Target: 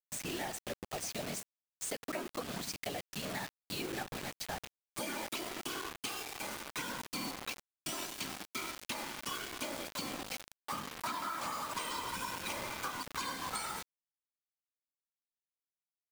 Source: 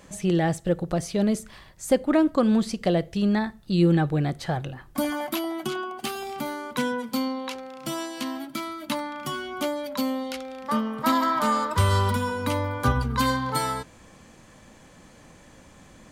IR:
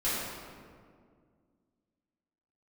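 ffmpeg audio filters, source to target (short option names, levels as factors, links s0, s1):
-filter_complex "[0:a]asplit=2[s0][s1];[s1]adelay=98,lowpass=f=4000:p=1,volume=0.141,asplit=2[s2][s3];[s3]adelay=98,lowpass=f=4000:p=1,volume=0.32,asplit=2[s4][s5];[s5]adelay=98,lowpass=f=4000:p=1,volume=0.32[s6];[s0][s2][s4][s6]amix=inputs=4:normalize=0,acrossover=split=200|1900[s7][s8][s9];[s7]aeval=exprs='0.0422*(abs(mod(val(0)/0.0422+3,4)-2)-1)':c=same[s10];[s10][s8][s9]amix=inputs=3:normalize=0,equalizer=f=7500:t=o:w=1.4:g=11,acrossover=split=370|3000[s11][s12][s13];[s11]acompressor=threshold=0.0158:ratio=6[s14];[s14][s12][s13]amix=inputs=3:normalize=0,highpass=110,equalizer=f=470:t=q:w=4:g=-9,equalizer=f=2400:t=q:w=4:g=9,equalizer=f=7400:t=q:w=4:g=-5,lowpass=f=9700:w=0.5412,lowpass=f=9700:w=1.3066,acrusher=bits=6:mode=log:mix=0:aa=0.000001,afftfilt=real='hypot(re,im)*cos(2*PI*random(0))':imag='hypot(re,im)*sin(2*PI*random(1))':win_size=512:overlap=0.75,acrusher=bits=5:mix=0:aa=0.000001,acompressor=threshold=0.0224:ratio=6,volume=0.75"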